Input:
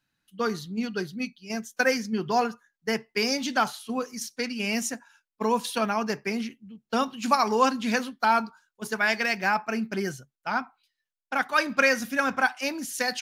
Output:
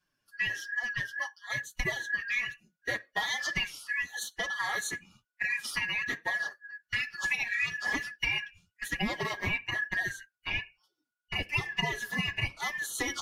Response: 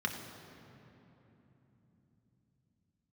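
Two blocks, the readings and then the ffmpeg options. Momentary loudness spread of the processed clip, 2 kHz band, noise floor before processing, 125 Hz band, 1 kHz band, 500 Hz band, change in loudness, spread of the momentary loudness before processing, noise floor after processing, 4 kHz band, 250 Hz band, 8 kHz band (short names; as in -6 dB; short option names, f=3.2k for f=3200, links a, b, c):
7 LU, -1.0 dB, under -85 dBFS, 0.0 dB, -14.0 dB, -15.5 dB, -5.0 dB, 11 LU, under -85 dBFS, -2.0 dB, -14.5 dB, -4.5 dB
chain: -af "afftfilt=real='real(if(lt(b,272),68*(eq(floor(b/68),0)*1+eq(floor(b/68),1)*0+eq(floor(b/68),2)*3+eq(floor(b/68),3)*2)+mod(b,68),b),0)':imag='imag(if(lt(b,272),68*(eq(floor(b/68),0)*1+eq(floor(b/68),1)*0+eq(floor(b/68),2)*3+eq(floor(b/68),3)*2)+mod(b,68),b),0)':win_size=2048:overlap=0.75,acompressor=threshold=-27dB:ratio=4,flanger=delay=5.3:depth=6:regen=-2:speed=1.1:shape=sinusoidal,volume=1.5dB" -ar 48000 -c:a libvorbis -b:a 96k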